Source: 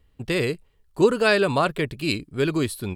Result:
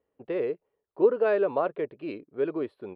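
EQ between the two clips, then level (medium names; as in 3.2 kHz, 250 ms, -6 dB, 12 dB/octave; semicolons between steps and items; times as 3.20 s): band-pass filter 490 Hz, Q 1.8; distance through air 480 m; tilt EQ +3 dB/octave; +3.5 dB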